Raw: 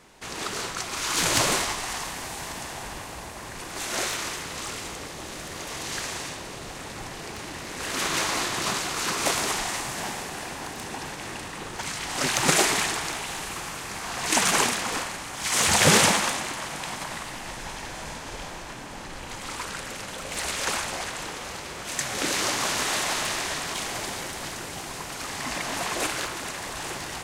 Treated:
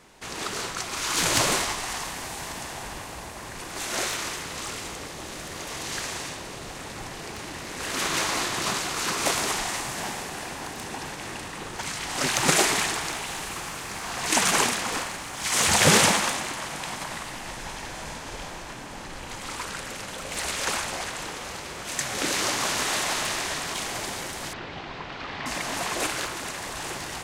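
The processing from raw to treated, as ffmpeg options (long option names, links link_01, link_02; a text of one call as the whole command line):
ffmpeg -i in.wav -filter_complex "[0:a]asettb=1/sr,asplit=3[link_01][link_02][link_03];[link_01]atrim=end=12.184[link_04];[link_02]atrim=start=12.18:end=16.46,asetpts=PTS-STARTPTS,afade=type=in:duration=0.004:curve=qsin,afade=type=out:start_time=4.276:duration=0.004:curve=qsin,acrusher=bits=8:mix=0:aa=0.5[link_05];[link_03]atrim=start=16.456[link_06];[link_04][link_05]acrossfade=duration=0.004:curve1=hsin:curve2=qsin[link_07];[link_07][link_06]acrossfade=duration=0.004:curve1=qsin:curve2=hsin,asettb=1/sr,asplit=3[link_08][link_09][link_10];[link_08]atrim=end=24.534[link_11];[link_09]atrim=start=24.53:end=25.46,asetpts=PTS-STARTPTS,afade=type=in:duration=0.004:curve=qsin,afade=type=out:start_time=0.926:duration=0.004:curve=qsin,lowpass=frequency=3900:width=0.5412,lowpass=frequency=3900:width=1.3066[link_12];[link_10]atrim=start=25.456[link_13];[link_11][link_12]acrossfade=duration=0.004:curve1=hsin:curve2=qsin[link_14];[link_14][link_13]acrossfade=duration=0.004:curve1=qsin:curve2=hsin" out.wav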